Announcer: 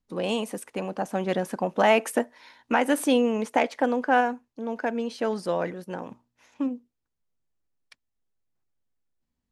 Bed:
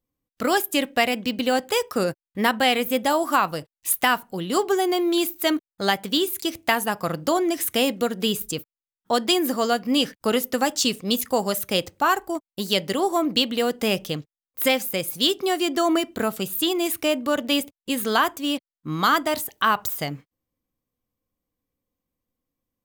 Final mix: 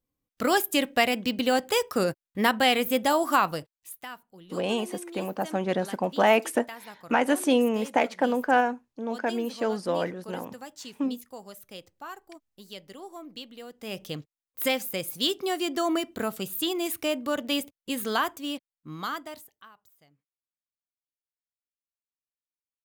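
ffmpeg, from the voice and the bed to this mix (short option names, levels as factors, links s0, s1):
-filter_complex "[0:a]adelay=4400,volume=0.944[s0];[1:a]volume=4.47,afade=t=out:st=3.52:d=0.38:silence=0.11885,afade=t=in:st=13.79:d=0.42:silence=0.177828,afade=t=out:st=18.1:d=1.59:silence=0.0375837[s1];[s0][s1]amix=inputs=2:normalize=0"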